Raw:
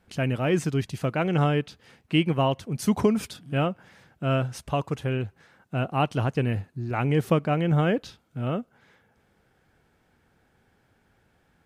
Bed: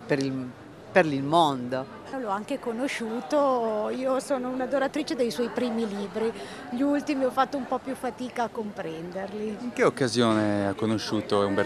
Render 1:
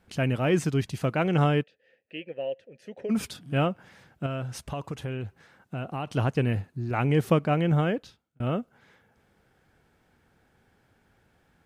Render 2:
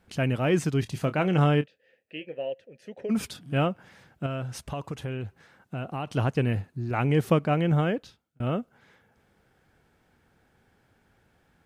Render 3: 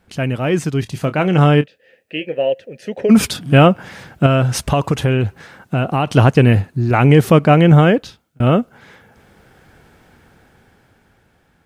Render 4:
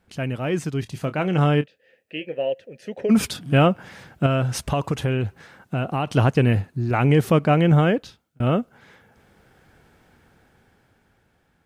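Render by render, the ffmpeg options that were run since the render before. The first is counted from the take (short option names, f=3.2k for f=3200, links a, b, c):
-filter_complex "[0:a]asplit=3[a][b][c];[a]afade=t=out:st=1.62:d=0.02[d];[b]asplit=3[e][f][g];[e]bandpass=f=530:t=q:w=8,volume=0dB[h];[f]bandpass=f=1.84k:t=q:w=8,volume=-6dB[i];[g]bandpass=f=2.48k:t=q:w=8,volume=-9dB[j];[h][i][j]amix=inputs=3:normalize=0,afade=t=in:st=1.62:d=0.02,afade=t=out:st=3.09:d=0.02[k];[c]afade=t=in:st=3.09:d=0.02[l];[d][k][l]amix=inputs=3:normalize=0,asettb=1/sr,asplit=3[m][n][o];[m]atrim=end=4.264[p];[n]atrim=start=4.26:end=6.07,asetpts=PTS-STARTPTS,afade=t=in:d=0.004:c=qsin,afade=t=out:st=1.806:d=0.004:c=qsin,acompressor=threshold=-29dB:ratio=6:attack=3.2:release=140:knee=1:detection=peak[q];[o]atrim=start=6.066[r];[p][q]acrossfade=d=0.004:c1=hsin:c2=qsin[s];[s][r]acrossfade=d=0.004:c1=qsin:c2=hsin,asplit=2[t][u];[t]atrim=end=8.4,asetpts=PTS-STARTPTS,afade=t=out:st=7.66:d=0.74[v];[u]atrim=start=8.4,asetpts=PTS-STARTPTS,afade=t=in:d=0.004:c=hsin[w];[v][w]concat=n=2:v=0:a=1"
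-filter_complex "[0:a]asettb=1/sr,asplit=3[a][b][c];[a]atrim=end=0.804[d];[b]atrim=start=0.8:end=2.52,asetpts=PTS-STARTPTS,afade=t=in:d=0.004:c=qsin,afade=t=out:st=1.716:d=0.004:c=qsin,asplit=2[e][f];[f]adelay=27,volume=-12.5dB[g];[e][g]amix=inputs=2:normalize=0,atrim=end_sample=75852[h];[c]atrim=start=2.516[i];[d][h]acrossfade=d=0.004:c1=hsin:c2=qsin[j];[j][i]acrossfade=d=0.004:c1=qsin:c2=hsin"
-af "dynaudnorm=f=330:g=11:m=14dB,alimiter=level_in=6dB:limit=-1dB:release=50:level=0:latency=1"
-af "volume=-7dB"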